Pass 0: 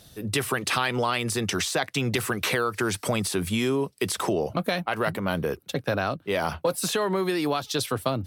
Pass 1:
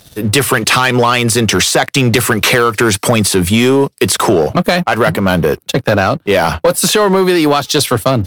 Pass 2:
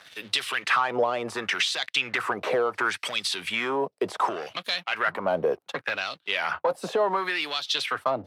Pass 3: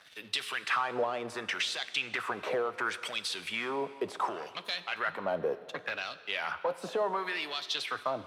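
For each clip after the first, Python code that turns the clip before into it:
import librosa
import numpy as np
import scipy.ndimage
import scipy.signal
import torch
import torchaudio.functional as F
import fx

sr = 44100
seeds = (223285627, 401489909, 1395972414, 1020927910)

y1 = fx.leveller(x, sr, passes=2)
y1 = F.gain(torch.from_numpy(y1), 8.5).numpy()
y2 = fx.filter_lfo_bandpass(y1, sr, shape='sine', hz=0.69, low_hz=580.0, high_hz=3800.0, q=2.2)
y2 = fx.band_squash(y2, sr, depth_pct=40)
y2 = F.gain(torch.from_numpy(y2), -6.5).numpy()
y3 = fx.rev_plate(y2, sr, seeds[0], rt60_s=2.0, hf_ratio=0.95, predelay_ms=0, drr_db=13.5)
y3 = F.gain(torch.from_numpy(y3), -7.0).numpy()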